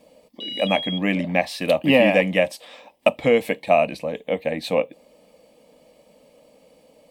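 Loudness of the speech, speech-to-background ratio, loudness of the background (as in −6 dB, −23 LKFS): −21.0 LKFS, 9.0 dB, −30.0 LKFS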